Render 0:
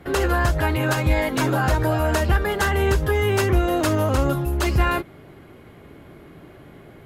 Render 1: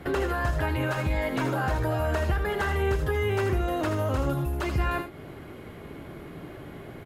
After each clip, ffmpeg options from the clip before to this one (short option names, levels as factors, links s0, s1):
-filter_complex "[0:a]acompressor=threshold=0.0282:ratio=2.5,asplit=2[s0][s1];[s1]aecho=0:1:79:0.335[s2];[s0][s2]amix=inputs=2:normalize=0,acrossover=split=3200[s3][s4];[s4]acompressor=threshold=0.00398:ratio=4:attack=1:release=60[s5];[s3][s5]amix=inputs=2:normalize=0,volume=1.33"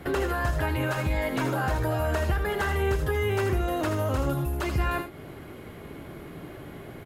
-af "highshelf=f=7200:g=5.5"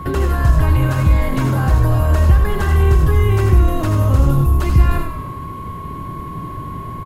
-filter_complex "[0:a]bass=f=250:g=14,treble=f=4000:g=4,aeval=exprs='val(0)+0.0251*sin(2*PI*1100*n/s)':c=same,asplit=7[s0][s1][s2][s3][s4][s5][s6];[s1]adelay=98,afreqshift=-39,volume=0.355[s7];[s2]adelay=196,afreqshift=-78,volume=0.191[s8];[s3]adelay=294,afreqshift=-117,volume=0.104[s9];[s4]adelay=392,afreqshift=-156,volume=0.0556[s10];[s5]adelay=490,afreqshift=-195,volume=0.0302[s11];[s6]adelay=588,afreqshift=-234,volume=0.0162[s12];[s0][s7][s8][s9][s10][s11][s12]amix=inputs=7:normalize=0,volume=1.26"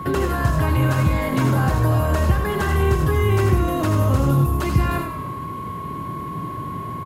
-af "highpass=110"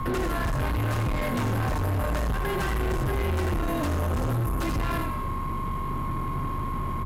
-af "aeval=exprs='val(0)+0.0398*(sin(2*PI*50*n/s)+sin(2*PI*2*50*n/s)/2+sin(2*PI*3*50*n/s)/3+sin(2*PI*4*50*n/s)/4+sin(2*PI*5*50*n/s)/5)':c=same,afreqshift=-21,asoftclip=type=tanh:threshold=0.0668"